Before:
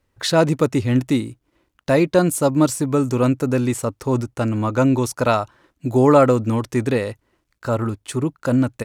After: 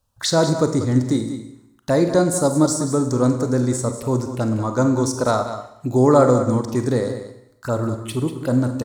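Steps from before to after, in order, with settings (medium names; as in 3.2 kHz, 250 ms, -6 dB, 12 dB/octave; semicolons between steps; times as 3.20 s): treble shelf 3.1 kHz +6.5 dB; touch-sensitive phaser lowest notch 350 Hz, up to 2.7 kHz, full sweep at -19.5 dBFS; delay 191 ms -11 dB; Schroeder reverb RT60 0.82 s, combs from 32 ms, DRR 7.5 dB; trim -1 dB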